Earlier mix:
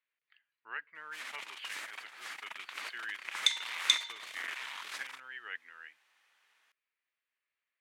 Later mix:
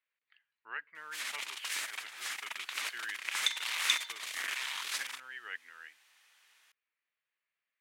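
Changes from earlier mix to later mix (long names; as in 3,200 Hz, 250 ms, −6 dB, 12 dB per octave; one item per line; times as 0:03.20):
first sound: add high-shelf EQ 2,900 Hz +12 dB
second sound −4.0 dB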